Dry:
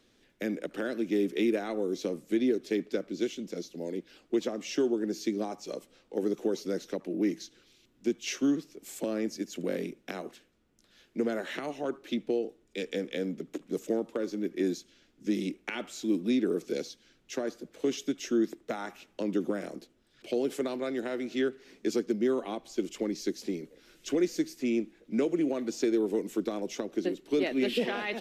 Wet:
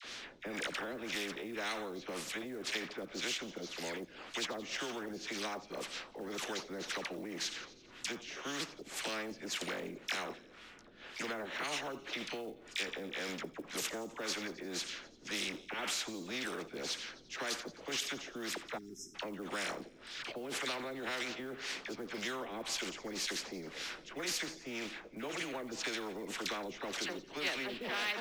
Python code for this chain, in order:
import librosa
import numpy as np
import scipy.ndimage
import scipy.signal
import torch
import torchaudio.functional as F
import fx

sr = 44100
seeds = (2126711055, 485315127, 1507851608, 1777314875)

p1 = F.preemphasis(torch.from_numpy(x), 0.97).numpy()
p2 = fx.filter_lfo_lowpass(p1, sr, shape='sine', hz=1.9, low_hz=350.0, high_hz=3600.0, q=0.83)
p3 = fx.peak_eq(p2, sr, hz=1600.0, db=5.5, octaves=2.3)
p4 = fx.over_compress(p3, sr, threshold_db=-58.0, ratio=-1.0)
p5 = p3 + (p4 * librosa.db_to_amplitude(0.5))
p6 = fx.dispersion(p5, sr, late='lows', ms=45.0, hz=1100.0)
p7 = fx.spec_erase(p6, sr, start_s=18.78, length_s=0.37, low_hz=410.0, high_hz=5100.0)
p8 = fx.quant_float(p7, sr, bits=6)
p9 = p8 + fx.echo_wet_highpass(p8, sr, ms=87, feedback_pct=59, hz=4300.0, wet_db=-24, dry=0)
p10 = fx.spectral_comp(p9, sr, ratio=2.0)
y = p10 * librosa.db_to_amplitude(7.0)